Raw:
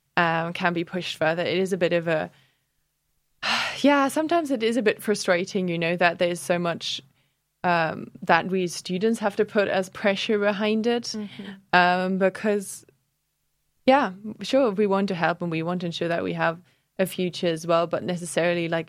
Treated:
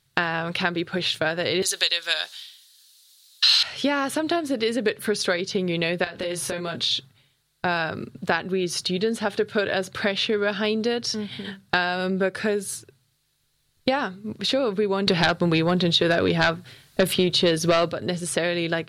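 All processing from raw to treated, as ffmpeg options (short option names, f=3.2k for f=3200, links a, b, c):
-filter_complex "[0:a]asettb=1/sr,asplit=3[a][b][c];[a]atrim=end=1.624[d];[b]atrim=start=1.62:end=3.63,asetpts=PTS-STARTPTS,afade=t=in:d=0.004:c=qsin,afade=t=out:st=2.006:d=0.004:c=qsin,highpass=1.3k,highshelf=f=2.8k:t=q:w=1.5:g=9.5,acontrast=53[e];[c]atrim=start=3.626[f];[d][e]acrossfade=d=0.004:c1=hsin:c2=qsin[g];[g][f]acrossfade=d=0.004:c1=qsin:c2=hsin,asettb=1/sr,asplit=3[h][i][j];[h]atrim=end=6.044[k];[i]atrim=start=6.04:end=6.91,asetpts=PTS-STARTPTS,afade=t=in:d=0.004:c=qsin,afade=t=out:st=0.866:d=0.004:c=qsin,acompressor=threshold=-29dB:ratio=5:attack=3.2:release=140:knee=1:detection=peak,asplit=2[l][m];[m]adelay=25,volume=-4.5dB[n];[l][n]amix=inputs=2:normalize=0,atrim=end_sample=38367[o];[j]atrim=start=6.906[p];[k][o]acrossfade=d=0.004:c1=hsin:c2=qsin[q];[q][p]acrossfade=d=0.004:c1=qsin:c2=hsin,asettb=1/sr,asplit=3[r][s][t];[r]atrim=end=15.074[u];[s]atrim=start=15.07:end=17.93,asetpts=PTS-STARTPTS,afade=t=in:d=0.004:c=qsin,afade=t=out:st=2.856:d=0.004:c=qsin,deesser=0.5,aeval=exprs='0.596*sin(PI/2*2.82*val(0)/0.596)':c=same[v];[t]atrim=start=17.926[w];[u][v]acrossfade=d=0.004:c1=hsin:c2=qsin[x];[x][w]acrossfade=d=0.004:c1=qsin:c2=hsin,equalizer=f=100:t=o:w=0.67:g=11,equalizer=f=400:t=o:w=0.67:g=5,equalizer=f=1.6k:t=o:w=0.67:g=6,equalizer=f=4k:t=o:w=0.67:g=12,equalizer=f=10k:t=o:w=0.67:g=5,acompressor=threshold=-21dB:ratio=3"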